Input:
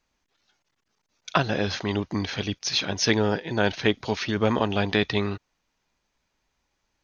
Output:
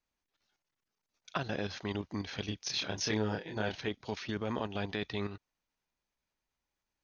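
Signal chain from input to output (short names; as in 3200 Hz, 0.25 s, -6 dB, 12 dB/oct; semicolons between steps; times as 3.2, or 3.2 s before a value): level quantiser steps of 9 dB; 2.45–3.77 doubler 28 ms -3 dB; gain -7.5 dB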